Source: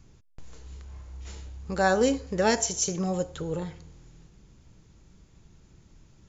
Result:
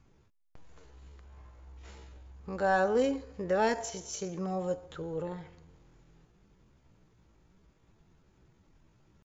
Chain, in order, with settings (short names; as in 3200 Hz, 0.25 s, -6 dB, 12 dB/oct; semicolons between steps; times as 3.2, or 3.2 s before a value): overdrive pedal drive 9 dB, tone 1200 Hz, clips at -8 dBFS; tempo 0.68×; gain -4 dB